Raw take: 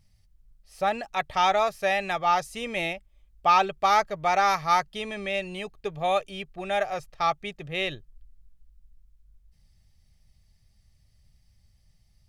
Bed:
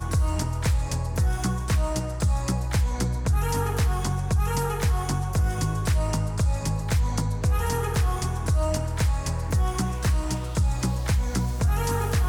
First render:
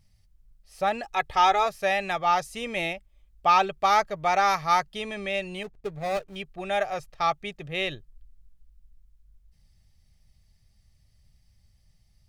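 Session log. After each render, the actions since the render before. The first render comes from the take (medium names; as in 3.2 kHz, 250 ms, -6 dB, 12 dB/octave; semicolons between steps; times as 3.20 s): 1.03–1.66 s: comb 2.4 ms, depth 56%; 5.63–6.36 s: median filter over 41 samples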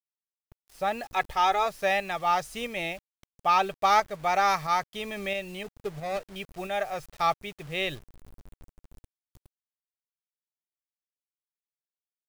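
bit crusher 8-bit; tremolo saw up 1.5 Hz, depth 40%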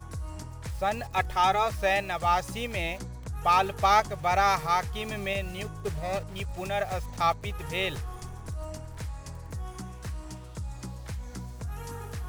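add bed -13.5 dB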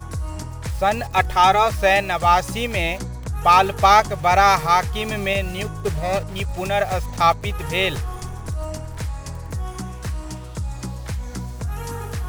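trim +9 dB; peak limiter -1 dBFS, peak gain reduction 1.5 dB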